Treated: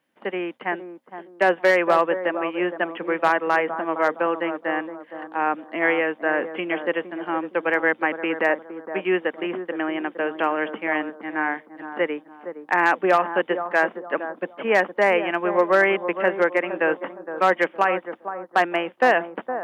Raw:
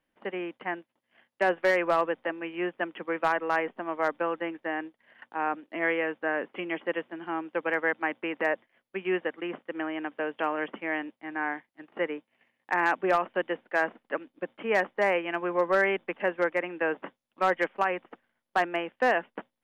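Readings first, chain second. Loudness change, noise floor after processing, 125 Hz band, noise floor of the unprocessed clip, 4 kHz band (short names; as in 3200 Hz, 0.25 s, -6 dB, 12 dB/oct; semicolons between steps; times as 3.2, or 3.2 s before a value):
+6.5 dB, -52 dBFS, +5.5 dB, -82 dBFS, +6.5 dB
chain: HPF 140 Hz; on a send: analogue delay 0.464 s, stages 4096, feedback 32%, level -10 dB; on the sum: gain +6.5 dB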